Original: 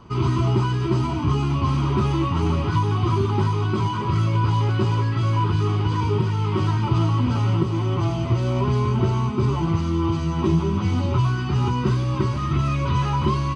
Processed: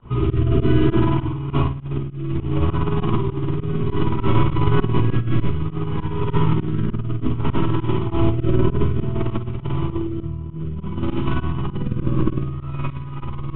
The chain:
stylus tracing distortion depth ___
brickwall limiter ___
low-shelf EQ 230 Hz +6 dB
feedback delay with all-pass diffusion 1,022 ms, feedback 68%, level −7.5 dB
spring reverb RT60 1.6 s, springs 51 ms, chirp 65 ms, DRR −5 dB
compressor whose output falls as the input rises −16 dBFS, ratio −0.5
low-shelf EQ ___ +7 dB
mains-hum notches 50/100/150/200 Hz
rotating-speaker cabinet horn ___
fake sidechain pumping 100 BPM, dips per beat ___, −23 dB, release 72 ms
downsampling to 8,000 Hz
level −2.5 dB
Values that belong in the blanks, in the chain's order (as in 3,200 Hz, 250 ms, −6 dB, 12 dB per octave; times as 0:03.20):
0.088 ms, −15.5 dBFS, 66 Hz, 0.6 Hz, 2